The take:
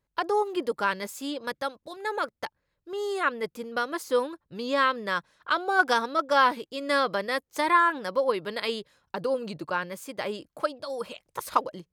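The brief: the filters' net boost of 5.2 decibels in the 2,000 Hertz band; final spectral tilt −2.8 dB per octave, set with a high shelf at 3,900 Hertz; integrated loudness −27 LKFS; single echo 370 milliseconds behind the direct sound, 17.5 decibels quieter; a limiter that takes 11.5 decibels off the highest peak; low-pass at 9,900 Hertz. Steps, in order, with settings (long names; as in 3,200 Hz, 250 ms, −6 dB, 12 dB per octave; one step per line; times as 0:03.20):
low-pass filter 9,900 Hz
parametric band 2,000 Hz +6 dB
high-shelf EQ 3,900 Hz +5 dB
brickwall limiter −17 dBFS
single-tap delay 370 ms −17.5 dB
level +2.5 dB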